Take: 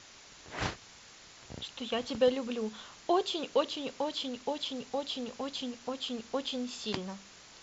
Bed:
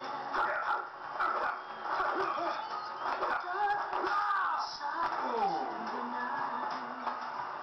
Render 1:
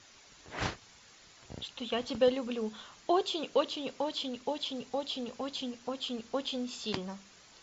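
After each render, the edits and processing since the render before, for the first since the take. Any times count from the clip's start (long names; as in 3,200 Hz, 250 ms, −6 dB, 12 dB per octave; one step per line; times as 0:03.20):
broadband denoise 6 dB, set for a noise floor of −54 dBFS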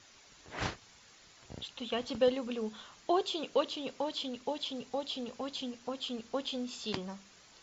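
level −1.5 dB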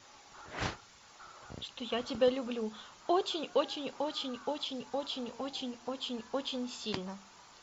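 mix in bed −22 dB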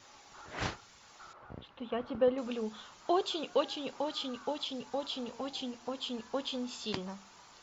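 0:01.33–0:02.38: low-pass filter 1,700 Hz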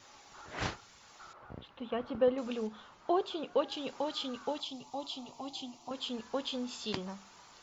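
0:02.67–0:03.72: low-pass filter 1,800 Hz 6 dB per octave
0:04.60–0:05.91: phaser with its sweep stopped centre 320 Hz, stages 8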